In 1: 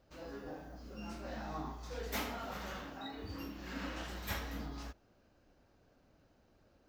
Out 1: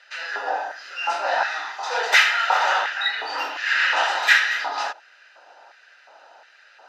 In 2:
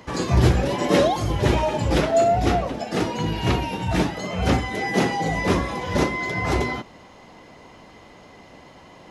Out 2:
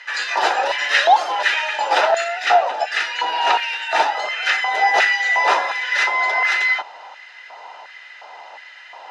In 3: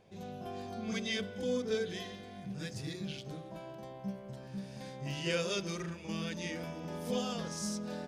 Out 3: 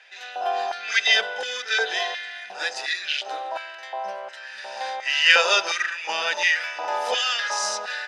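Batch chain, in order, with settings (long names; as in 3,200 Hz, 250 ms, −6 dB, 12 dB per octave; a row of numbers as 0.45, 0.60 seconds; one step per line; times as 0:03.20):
auto-filter high-pass square 1.4 Hz 880–1,800 Hz
band-pass filter 470–5,100 Hz
notch comb filter 1,100 Hz
normalise the peak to −2 dBFS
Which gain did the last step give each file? +24.5, +8.5, +19.5 decibels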